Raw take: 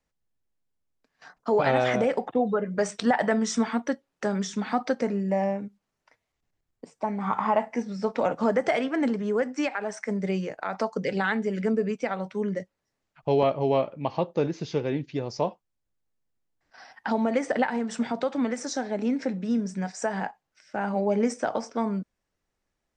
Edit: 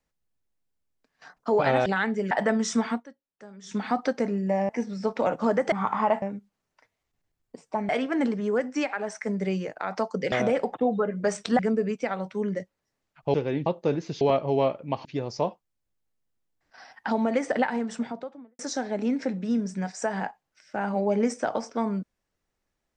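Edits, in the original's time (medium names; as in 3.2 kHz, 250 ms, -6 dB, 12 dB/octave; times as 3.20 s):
1.86–3.13 s: swap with 11.14–11.59 s
3.74–4.57 s: dip -19 dB, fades 0.13 s
5.51–7.18 s: swap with 7.68–8.71 s
13.34–14.18 s: swap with 14.73–15.05 s
17.73–18.59 s: studio fade out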